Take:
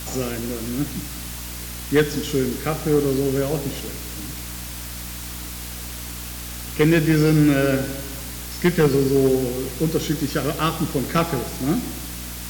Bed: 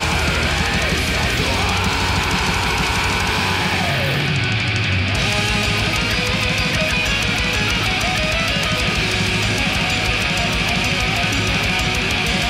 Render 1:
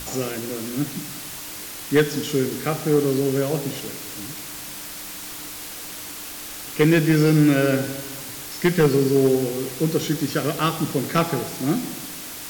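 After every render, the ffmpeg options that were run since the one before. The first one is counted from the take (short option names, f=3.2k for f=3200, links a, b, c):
-af "bandreject=f=60:t=h:w=6,bandreject=f=120:t=h:w=6,bandreject=f=180:t=h:w=6,bandreject=f=240:t=h:w=6"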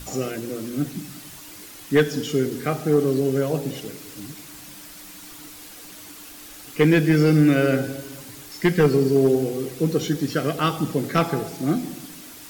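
-af "afftdn=nr=8:nf=-35"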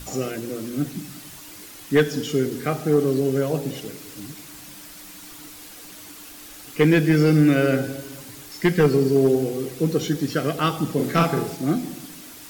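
-filter_complex "[0:a]asettb=1/sr,asplit=3[a][b][c];[a]atrim=end=10.954[d];[b]atrim=start=10.95:end=11.55,asetpts=PTS-STARTPTS,afade=t=in:d=0.004:c=qsin,afade=t=out:st=0.596:d=0.004:c=qsin,asplit=2[e][f];[f]adelay=41,volume=-3dB[g];[e][g]amix=inputs=2:normalize=0,atrim=end_sample=26460[h];[c]atrim=start=11.546[i];[d][h]acrossfade=d=0.004:c1=hsin:c2=qsin[j];[j][i]acrossfade=d=0.004:c1=qsin:c2=hsin"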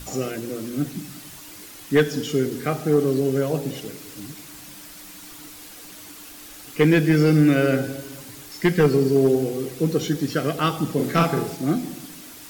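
-af anull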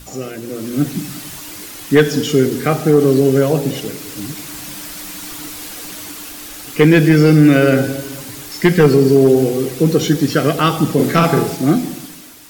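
-af "alimiter=limit=-11.5dB:level=0:latency=1:release=35,dynaudnorm=f=190:g=7:m=11.5dB"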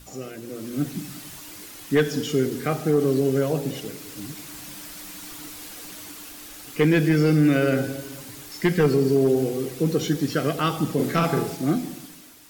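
-af "volume=-9dB"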